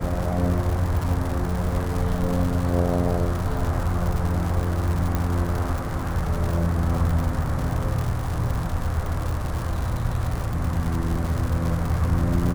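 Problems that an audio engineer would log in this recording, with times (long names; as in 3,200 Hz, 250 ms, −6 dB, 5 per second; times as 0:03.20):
surface crackle 180 per second −26 dBFS
0:05.15: click −11 dBFS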